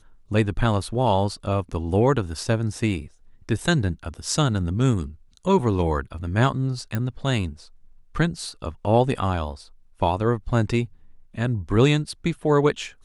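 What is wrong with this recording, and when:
0:06.95: click −13 dBFS

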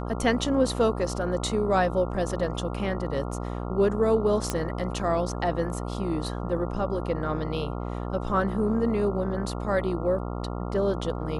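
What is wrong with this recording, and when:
mains buzz 60 Hz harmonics 23 −32 dBFS
0:04.50: click −11 dBFS

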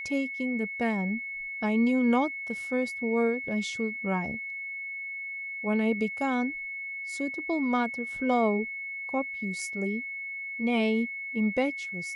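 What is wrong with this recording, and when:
whistle 2,200 Hz −34 dBFS

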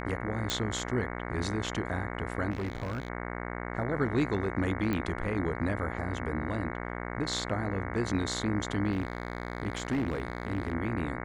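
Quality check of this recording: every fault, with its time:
mains buzz 60 Hz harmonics 37 −37 dBFS
0:00.50: click
0:02.50–0:03.08: clipping −29.5 dBFS
0:04.93: click −19 dBFS
0:08.91–0:10.73: clipping −25 dBFS

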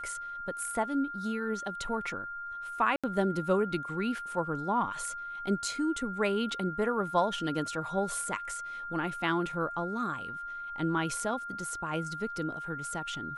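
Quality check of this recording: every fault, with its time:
whistle 1,400 Hz −37 dBFS
0:02.96–0:03.04: drop-out 76 ms

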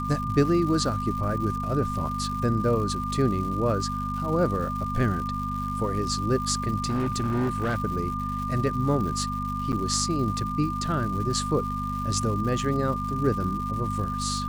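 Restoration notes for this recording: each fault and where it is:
surface crackle 280 per second −35 dBFS
mains hum 50 Hz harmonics 5 −32 dBFS
whistle 1,200 Hz −30 dBFS
0:06.84–0:07.78: clipping −21.5 dBFS
0:09.72–0:09.73: drop-out 8.4 ms

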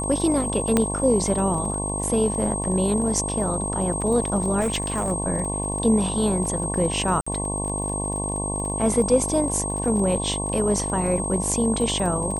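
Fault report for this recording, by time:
mains buzz 50 Hz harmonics 22 −29 dBFS
surface crackle 29 per second −30 dBFS
whistle 8,400 Hz −28 dBFS
0:00.77: click −6 dBFS
0:04.60–0:05.12: clipping −19 dBFS
0:07.21–0:07.26: drop-out 55 ms

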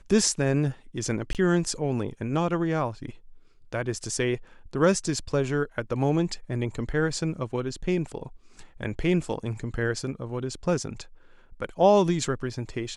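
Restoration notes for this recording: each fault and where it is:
0:01.33–0:01.35: drop-out 18 ms

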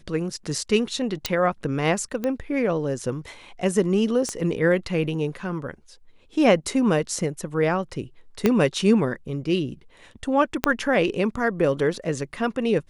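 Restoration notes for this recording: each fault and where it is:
0:01.26: click −7 dBFS
0:02.24: click −14 dBFS
0:04.29: click −16 dBFS
0:08.46: click −6 dBFS
0:10.64: click −3 dBFS

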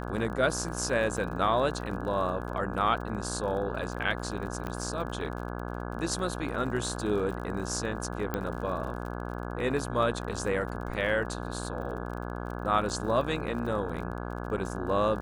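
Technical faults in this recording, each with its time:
mains buzz 60 Hz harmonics 28 −36 dBFS
surface crackle 40 per second −38 dBFS
0:01.17–0:01.18: drop-out 5.1 ms
0:04.67: click −21 dBFS
0:08.34: click −17 dBFS

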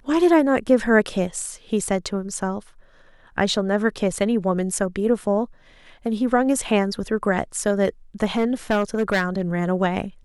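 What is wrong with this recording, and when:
0:08.37–0:09.42: clipping −15 dBFS

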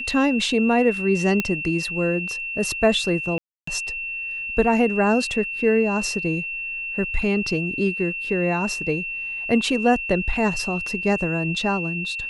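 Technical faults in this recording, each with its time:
whistle 2,700 Hz −27 dBFS
0:01.40: click −8 dBFS
0:03.38–0:03.67: drop-out 294 ms

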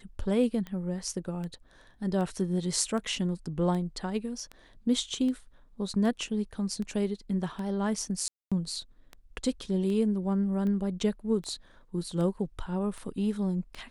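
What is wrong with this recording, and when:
scratch tick 78 rpm −26 dBFS
0:08.28–0:08.52: drop-out 236 ms

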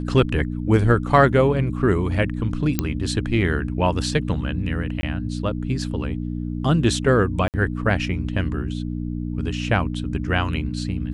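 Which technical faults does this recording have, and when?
mains hum 60 Hz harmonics 5 −27 dBFS
0:02.79: click −6 dBFS
0:05.01–0:05.03: drop-out 20 ms
0:07.48–0:07.54: drop-out 58 ms

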